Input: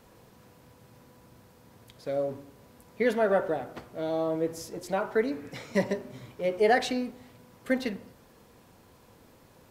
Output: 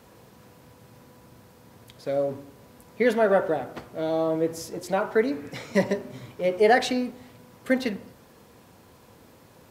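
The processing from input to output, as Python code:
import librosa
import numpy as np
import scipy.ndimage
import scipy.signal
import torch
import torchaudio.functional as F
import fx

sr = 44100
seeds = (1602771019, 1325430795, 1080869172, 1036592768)

y = scipy.signal.sosfilt(scipy.signal.butter(2, 56.0, 'highpass', fs=sr, output='sos'), x)
y = y * 10.0 ** (4.0 / 20.0)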